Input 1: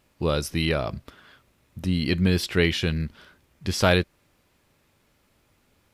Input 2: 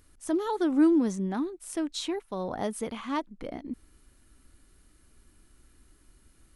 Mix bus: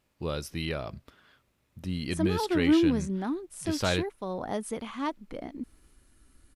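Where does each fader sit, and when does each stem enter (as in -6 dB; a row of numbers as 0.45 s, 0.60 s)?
-8.5 dB, -1.0 dB; 0.00 s, 1.90 s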